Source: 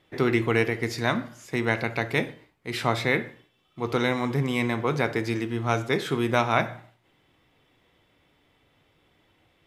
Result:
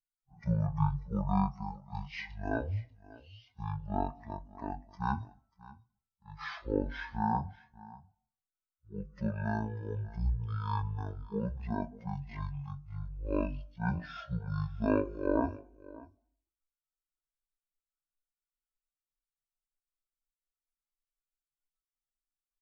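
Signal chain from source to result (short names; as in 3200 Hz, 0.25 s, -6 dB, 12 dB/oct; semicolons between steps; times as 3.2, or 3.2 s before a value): per-bin expansion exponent 2; echo 0.252 s -20 dB; speed mistake 78 rpm record played at 33 rpm; gain -4 dB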